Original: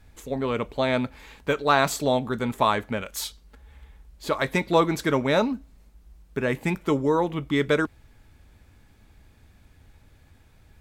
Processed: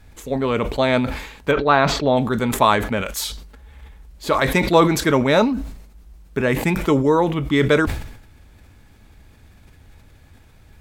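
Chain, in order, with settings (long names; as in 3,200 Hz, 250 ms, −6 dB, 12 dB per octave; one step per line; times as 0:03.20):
0:01.51–0:02.17: high-frequency loss of the air 250 metres
level that may fall only so fast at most 71 dB per second
level +5.5 dB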